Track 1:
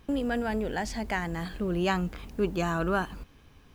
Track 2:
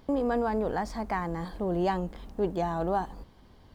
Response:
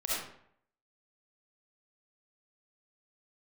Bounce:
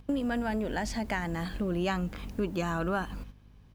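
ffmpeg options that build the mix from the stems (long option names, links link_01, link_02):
-filter_complex "[0:a]aeval=exprs='val(0)+0.00562*(sin(2*PI*50*n/s)+sin(2*PI*2*50*n/s)/2+sin(2*PI*3*50*n/s)/3+sin(2*PI*4*50*n/s)/4+sin(2*PI*5*50*n/s)/5)':channel_layout=same,volume=1dB[link_01];[1:a]equalizer=frequency=89:width_type=o:width=2.1:gain=12.5,adelay=3.9,volume=-13.5dB,asplit=2[link_02][link_03];[link_03]apad=whole_len=165210[link_04];[link_01][link_04]sidechaingate=range=-11dB:threshold=-55dB:ratio=16:detection=peak[link_05];[link_05][link_02]amix=inputs=2:normalize=0,acompressor=threshold=-29dB:ratio=2"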